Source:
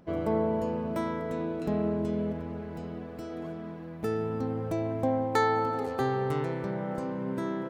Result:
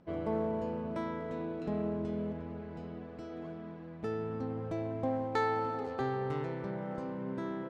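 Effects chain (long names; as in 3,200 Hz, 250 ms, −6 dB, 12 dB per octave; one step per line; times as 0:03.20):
low-pass filter 5,100 Hz 12 dB per octave
in parallel at −5 dB: asymmetric clip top −30.5 dBFS
on the sum: level −9 dB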